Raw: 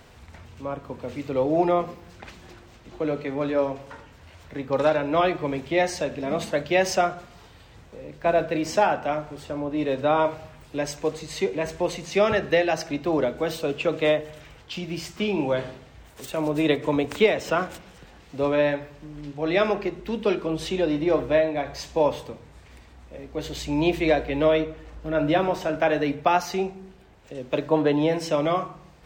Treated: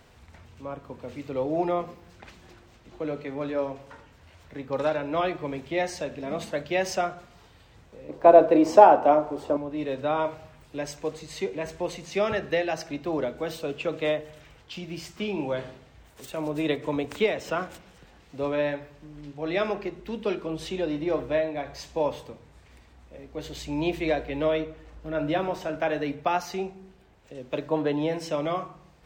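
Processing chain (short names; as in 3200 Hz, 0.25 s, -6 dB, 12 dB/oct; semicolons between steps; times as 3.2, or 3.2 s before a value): 8.09–9.57 band shelf 550 Hz +12.5 dB 2.5 oct; gain -5 dB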